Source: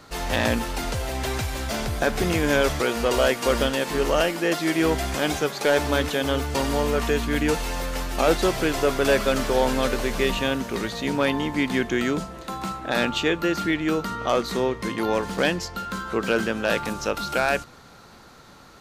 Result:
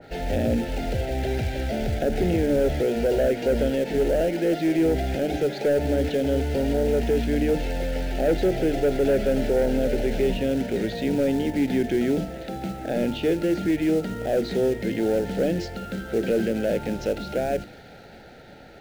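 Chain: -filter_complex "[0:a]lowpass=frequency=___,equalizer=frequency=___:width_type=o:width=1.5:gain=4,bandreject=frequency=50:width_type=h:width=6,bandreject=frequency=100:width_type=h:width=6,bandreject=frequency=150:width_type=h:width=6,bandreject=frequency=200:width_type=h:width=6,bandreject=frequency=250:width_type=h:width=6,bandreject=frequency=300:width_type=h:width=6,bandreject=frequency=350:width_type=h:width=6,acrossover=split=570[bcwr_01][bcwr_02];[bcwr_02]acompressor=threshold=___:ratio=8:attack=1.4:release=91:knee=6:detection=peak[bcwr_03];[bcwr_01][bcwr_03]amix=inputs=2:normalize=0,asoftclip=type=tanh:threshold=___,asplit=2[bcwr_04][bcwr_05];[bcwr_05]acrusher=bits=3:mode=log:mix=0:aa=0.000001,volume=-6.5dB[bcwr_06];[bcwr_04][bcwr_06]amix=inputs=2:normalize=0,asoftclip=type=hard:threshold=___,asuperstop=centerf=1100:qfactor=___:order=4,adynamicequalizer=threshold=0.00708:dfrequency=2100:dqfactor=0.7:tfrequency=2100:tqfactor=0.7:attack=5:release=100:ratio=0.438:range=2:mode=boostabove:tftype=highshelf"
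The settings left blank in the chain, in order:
2900, 620, -36dB, -17.5dB, -15.5dB, 1.6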